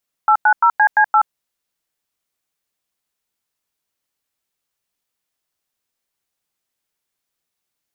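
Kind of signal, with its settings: DTMF "890CC8", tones 76 ms, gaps 96 ms, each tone -11.5 dBFS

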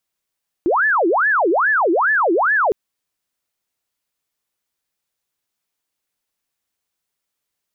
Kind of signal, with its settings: siren wail 326–1750 Hz 2.4/s sine -13 dBFS 2.06 s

